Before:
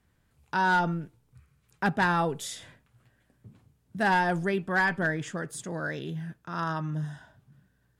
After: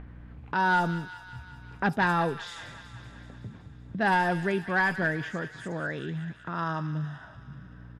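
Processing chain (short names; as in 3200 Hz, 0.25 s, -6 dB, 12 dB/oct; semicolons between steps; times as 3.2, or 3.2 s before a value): bands offset in time lows, highs 70 ms, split 5800 Hz; hum 60 Hz, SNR 33 dB; upward compressor, threshold -30 dBFS; low-pass opened by the level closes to 1600 Hz, open at -22.5 dBFS; on a send: thin delay 0.189 s, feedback 67%, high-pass 1700 Hz, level -10 dB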